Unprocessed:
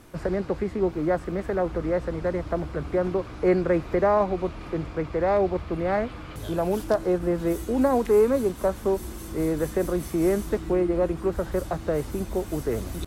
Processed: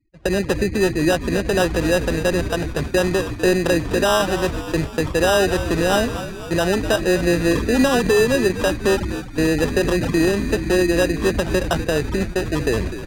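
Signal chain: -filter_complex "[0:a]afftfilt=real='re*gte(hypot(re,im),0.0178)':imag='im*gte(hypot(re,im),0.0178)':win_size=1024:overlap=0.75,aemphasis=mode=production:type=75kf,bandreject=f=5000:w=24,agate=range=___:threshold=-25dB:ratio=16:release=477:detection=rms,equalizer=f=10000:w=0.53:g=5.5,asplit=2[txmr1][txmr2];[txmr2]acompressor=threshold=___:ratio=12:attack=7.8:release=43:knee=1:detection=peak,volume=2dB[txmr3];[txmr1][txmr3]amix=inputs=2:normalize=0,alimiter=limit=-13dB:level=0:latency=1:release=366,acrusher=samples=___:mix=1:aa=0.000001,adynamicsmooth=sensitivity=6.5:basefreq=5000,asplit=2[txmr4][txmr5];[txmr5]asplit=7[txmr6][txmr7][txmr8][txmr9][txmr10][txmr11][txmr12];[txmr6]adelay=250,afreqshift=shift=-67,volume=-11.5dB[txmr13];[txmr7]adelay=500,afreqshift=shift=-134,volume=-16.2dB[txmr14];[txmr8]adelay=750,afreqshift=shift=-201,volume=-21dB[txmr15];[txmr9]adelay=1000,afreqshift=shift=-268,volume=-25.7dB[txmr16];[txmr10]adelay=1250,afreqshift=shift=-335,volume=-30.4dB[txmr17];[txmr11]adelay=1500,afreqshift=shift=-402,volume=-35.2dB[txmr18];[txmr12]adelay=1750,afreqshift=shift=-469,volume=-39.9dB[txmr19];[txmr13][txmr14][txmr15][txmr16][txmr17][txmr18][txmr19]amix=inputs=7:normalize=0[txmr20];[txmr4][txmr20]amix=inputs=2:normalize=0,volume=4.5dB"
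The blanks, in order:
-24dB, -34dB, 20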